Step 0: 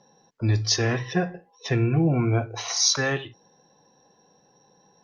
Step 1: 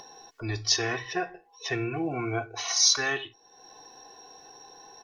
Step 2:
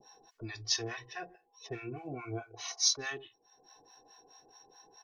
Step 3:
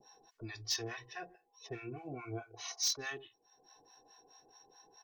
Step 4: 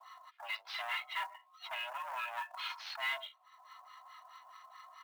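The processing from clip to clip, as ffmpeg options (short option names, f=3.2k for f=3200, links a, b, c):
-af "equalizer=f=140:w=0.32:g=-12,aecho=1:1:2.7:0.68,acompressor=mode=upward:threshold=-36dB:ratio=2.5,volume=-1dB"
-filter_complex "[0:a]adynamicequalizer=threshold=0.00631:dfrequency=1600:dqfactor=1.1:tfrequency=1600:tqfactor=1.1:attack=5:release=100:ratio=0.375:range=2:mode=cutabove:tftype=bell,acrossover=split=720[a][b];[a]aeval=exprs='val(0)*(1-1/2+1/2*cos(2*PI*4.7*n/s))':c=same[c];[b]aeval=exprs='val(0)*(1-1/2-1/2*cos(2*PI*4.7*n/s))':c=same[d];[c][d]amix=inputs=2:normalize=0,volume=-5dB"
-af "asoftclip=type=hard:threshold=-25dB,volume=-3dB"
-af "aeval=exprs='(tanh(200*val(0)+0.55)-tanh(0.55))/200':c=same,highpass=f=550:t=q:w=0.5412,highpass=f=550:t=q:w=1.307,lowpass=f=3.5k:t=q:w=0.5176,lowpass=f=3.5k:t=q:w=0.7071,lowpass=f=3.5k:t=q:w=1.932,afreqshift=260,acrusher=bits=5:mode=log:mix=0:aa=0.000001,volume=14.5dB"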